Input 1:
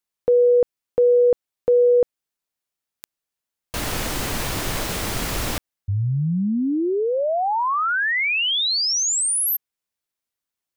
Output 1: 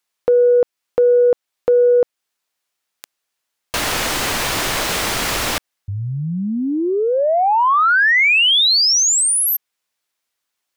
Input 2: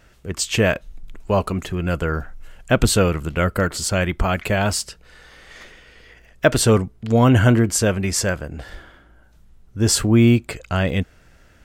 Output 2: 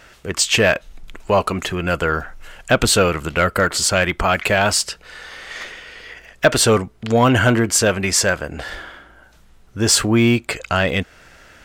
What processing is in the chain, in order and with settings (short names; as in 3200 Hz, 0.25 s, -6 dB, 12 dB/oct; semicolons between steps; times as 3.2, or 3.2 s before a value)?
in parallel at -0.5 dB: compressor, threshold -27 dBFS; on the sum: overdrive pedal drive 11 dB, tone 7200 Hz, clips at 0 dBFS; gain -1 dB